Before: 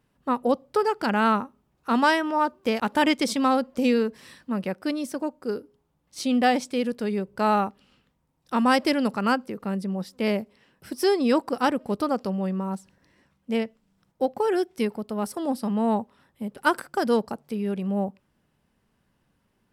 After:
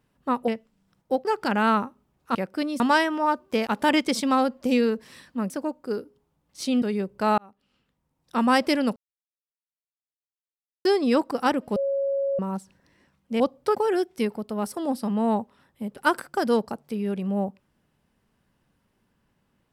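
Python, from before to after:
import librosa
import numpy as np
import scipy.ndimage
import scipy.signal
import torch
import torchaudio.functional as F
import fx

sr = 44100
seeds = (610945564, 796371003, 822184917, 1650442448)

y = fx.edit(x, sr, fx.swap(start_s=0.48, length_s=0.35, other_s=13.58, other_length_s=0.77),
    fx.move(start_s=4.63, length_s=0.45, to_s=1.93),
    fx.cut(start_s=6.4, length_s=0.6),
    fx.fade_in_span(start_s=7.56, length_s=0.98),
    fx.silence(start_s=9.14, length_s=1.89),
    fx.bleep(start_s=11.94, length_s=0.63, hz=552.0, db=-22.0), tone=tone)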